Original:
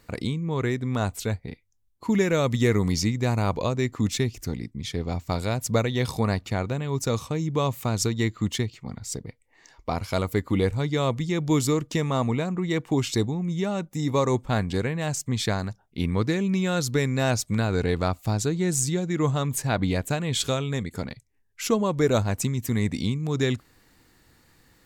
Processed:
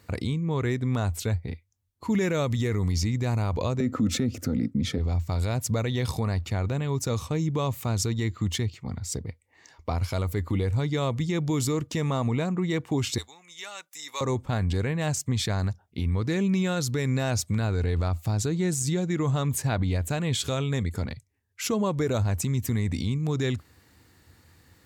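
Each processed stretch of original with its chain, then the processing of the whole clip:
3.80–4.98 s: high-pass 84 Hz + small resonant body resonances 250/510/1300 Hz, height 17 dB, ringing for 25 ms
13.18–14.21 s: high-pass 1.5 kHz + treble shelf 5.2 kHz +4 dB
whole clip: peaking EQ 82 Hz +13 dB 0.58 oct; peak limiter -17 dBFS; high-pass 63 Hz

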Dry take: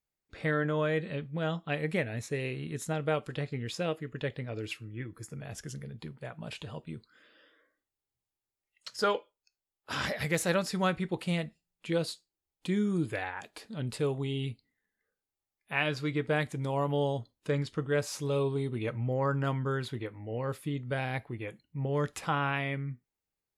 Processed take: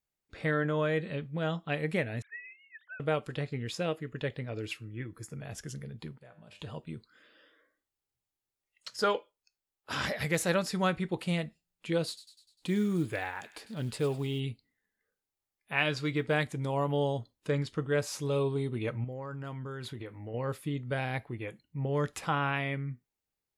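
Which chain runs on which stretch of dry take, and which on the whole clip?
2.22–3.00 s: formants replaced by sine waves + ladder high-pass 1.5 kHz, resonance 75%
6.18–6.60 s: compression 2.5:1, threshold -43 dBFS + feedback comb 100 Hz, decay 0.61 s, mix 70%
12.07–14.40 s: short-mantissa float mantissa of 4-bit + feedback echo behind a high-pass 100 ms, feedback 56%, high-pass 2 kHz, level -12.5 dB
15.78–16.45 s: low-pass 10 kHz + treble shelf 2.5 kHz +4 dB + short-mantissa float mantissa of 6-bit
19.04–20.34 s: compression 10:1, threshold -36 dBFS + treble shelf 8.4 kHz +2.5 dB
whole clip: none

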